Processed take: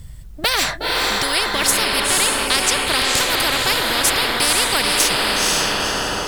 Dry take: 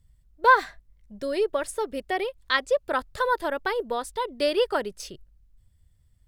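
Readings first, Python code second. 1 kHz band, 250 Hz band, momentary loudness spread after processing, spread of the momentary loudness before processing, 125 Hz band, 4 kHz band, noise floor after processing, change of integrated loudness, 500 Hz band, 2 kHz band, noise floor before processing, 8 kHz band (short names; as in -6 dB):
+4.0 dB, +8.5 dB, 4 LU, 13 LU, n/a, +20.0 dB, -34 dBFS, +9.5 dB, +1.0 dB, +9.5 dB, -63 dBFS, +26.0 dB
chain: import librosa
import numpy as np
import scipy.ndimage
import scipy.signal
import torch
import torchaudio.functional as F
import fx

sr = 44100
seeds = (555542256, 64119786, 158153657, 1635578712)

y = fx.echo_diffused(x, sr, ms=493, feedback_pct=40, wet_db=-3.5)
y = fx.spectral_comp(y, sr, ratio=10.0)
y = F.gain(torch.from_numpy(y), 5.0).numpy()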